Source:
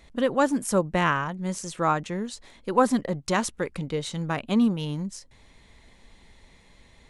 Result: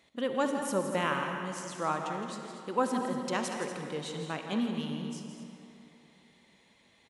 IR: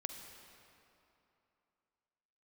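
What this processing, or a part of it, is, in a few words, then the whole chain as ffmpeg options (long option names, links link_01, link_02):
stadium PA: -filter_complex "[0:a]highpass=170,equalizer=frequency=3000:width_type=o:width=0.52:gain=4,aecho=1:1:166.2|239.1:0.316|0.251[link_01];[1:a]atrim=start_sample=2205[link_02];[link_01][link_02]afir=irnorm=-1:irlink=0,volume=-6dB"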